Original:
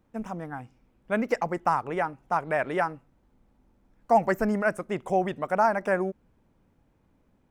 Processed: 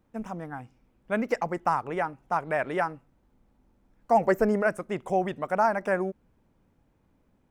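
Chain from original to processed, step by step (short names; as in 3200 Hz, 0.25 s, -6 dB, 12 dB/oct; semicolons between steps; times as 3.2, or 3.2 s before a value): 4.19–4.67 bell 460 Hz +7.5 dB 0.73 oct; gain -1 dB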